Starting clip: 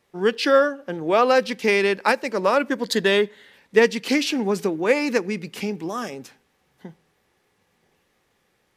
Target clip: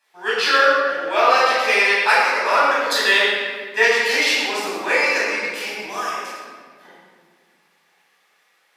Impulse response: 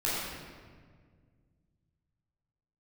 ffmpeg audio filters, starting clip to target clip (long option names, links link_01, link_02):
-filter_complex "[0:a]highpass=960[link_01];[1:a]atrim=start_sample=2205,asetrate=43218,aresample=44100[link_02];[link_01][link_02]afir=irnorm=-1:irlink=0"